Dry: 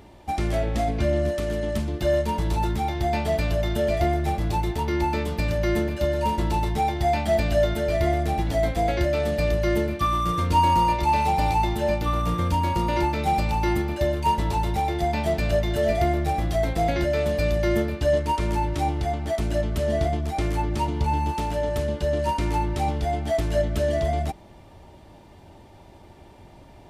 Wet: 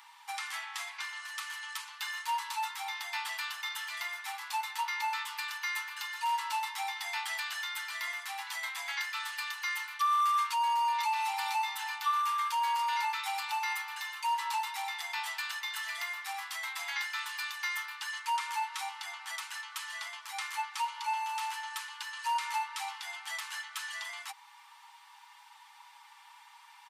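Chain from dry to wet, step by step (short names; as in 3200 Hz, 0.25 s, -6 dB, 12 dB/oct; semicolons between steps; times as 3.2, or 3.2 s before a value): in parallel at -2 dB: compressor, threshold -29 dBFS, peak gain reduction 13.5 dB; on the sum: steep high-pass 870 Hz 96 dB/oct; limiter -20 dBFS, peak gain reduction 9.5 dB; comb 6.1 ms, depth 44%; gain -3.5 dB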